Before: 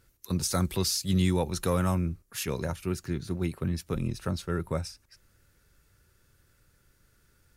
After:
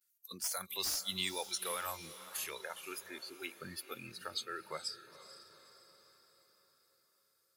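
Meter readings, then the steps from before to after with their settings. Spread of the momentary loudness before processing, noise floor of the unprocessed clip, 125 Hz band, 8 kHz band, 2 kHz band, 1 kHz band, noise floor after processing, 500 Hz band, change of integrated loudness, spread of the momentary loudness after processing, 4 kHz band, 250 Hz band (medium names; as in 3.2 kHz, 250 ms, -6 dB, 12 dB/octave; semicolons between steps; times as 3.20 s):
8 LU, -67 dBFS, -28.5 dB, -4.5 dB, -2.5 dB, -7.0 dB, -76 dBFS, -14.0 dB, -9.5 dB, 18 LU, -2.5 dB, -22.0 dB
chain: vibrato 0.36 Hz 36 cents; differentiator; in parallel at -2.5 dB: compression, threshold -53 dBFS, peak gain reduction 23.5 dB; on the sum: hard clipper -26 dBFS, distortion -15 dB; spectral noise reduction 21 dB; de-esser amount 90%; on a send: echo that smears into a reverb 472 ms, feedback 52%, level -13.5 dB; on the sum: trim +8 dB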